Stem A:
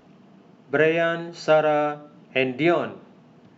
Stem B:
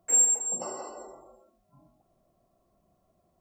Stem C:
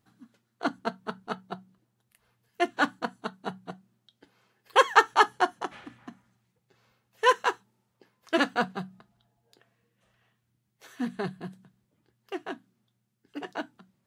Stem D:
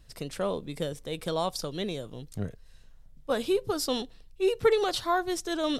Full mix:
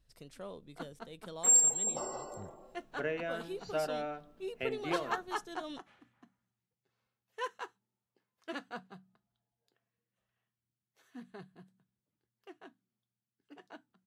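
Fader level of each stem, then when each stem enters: -16.5, -2.5, -17.0, -15.5 dB; 2.25, 1.35, 0.15, 0.00 s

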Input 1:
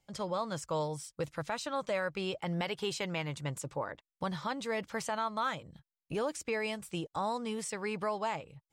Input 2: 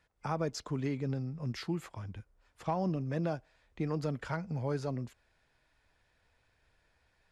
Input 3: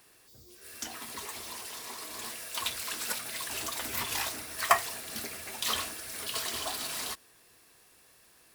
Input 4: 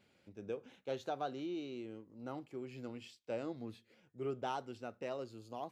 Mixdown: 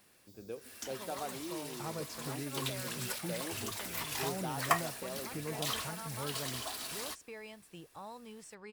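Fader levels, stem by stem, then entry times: -13.5, -8.0, -5.5, -2.0 dB; 0.80, 1.55, 0.00, 0.00 s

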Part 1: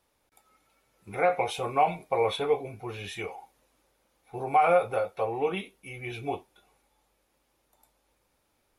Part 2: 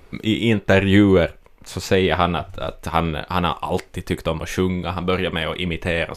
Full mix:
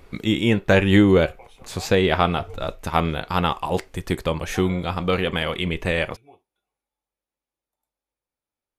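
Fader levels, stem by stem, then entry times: -19.0, -1.0 dB; 0.00, 0.00 s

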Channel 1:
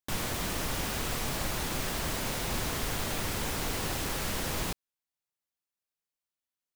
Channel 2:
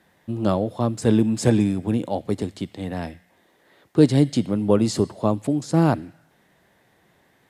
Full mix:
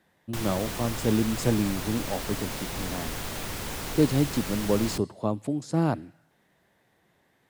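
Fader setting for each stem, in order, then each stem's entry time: -1.5, -6.5 dB; 0.25, 0.00 s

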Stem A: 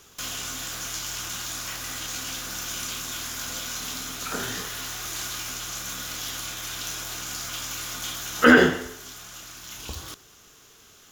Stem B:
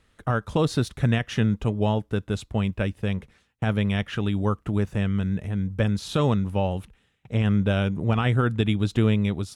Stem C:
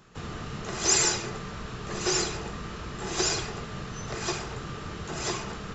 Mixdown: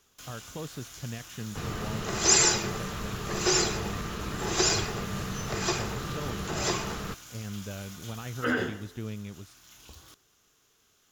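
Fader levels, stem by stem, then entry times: -14.0, -16.5, +2.0 dB; 0.00, 0.00, 1.40 s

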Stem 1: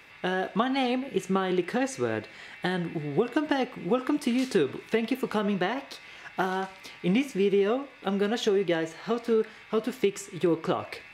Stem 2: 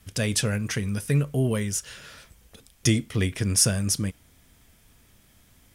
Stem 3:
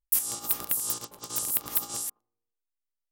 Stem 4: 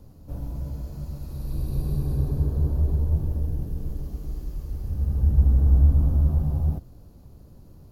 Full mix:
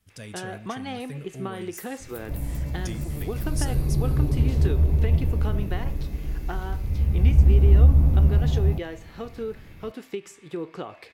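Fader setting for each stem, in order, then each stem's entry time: -7.5, -15.0, -19.0, +2.5 dB; 0.10, 0.00, 1.65, 2.00 s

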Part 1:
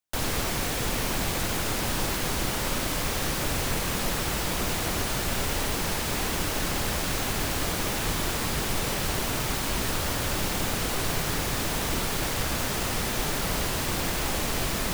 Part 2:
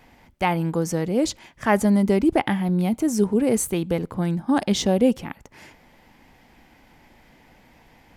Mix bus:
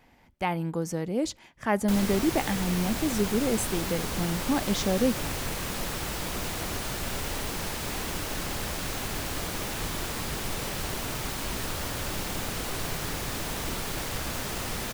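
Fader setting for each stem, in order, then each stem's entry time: -4.5, -6.5 dB; 1.75, 0.00 s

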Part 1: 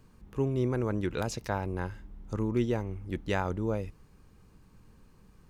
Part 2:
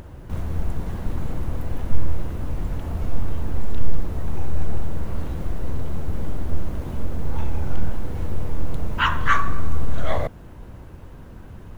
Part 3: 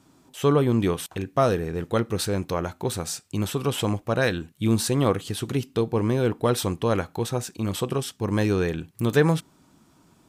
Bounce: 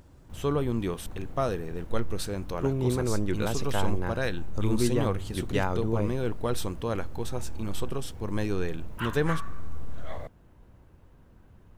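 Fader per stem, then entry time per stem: +1.5, -14.5, -7.5 dB; 2.25, 0.00, 0.00 s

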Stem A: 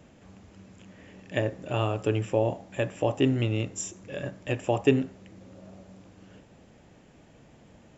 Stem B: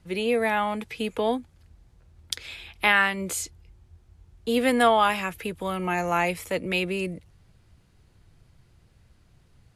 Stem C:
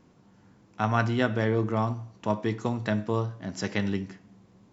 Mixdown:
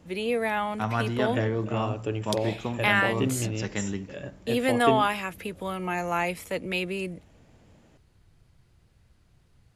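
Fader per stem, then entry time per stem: -4.0, -3.0, -3.0 dB; 0.00, 0.00, 0.00 s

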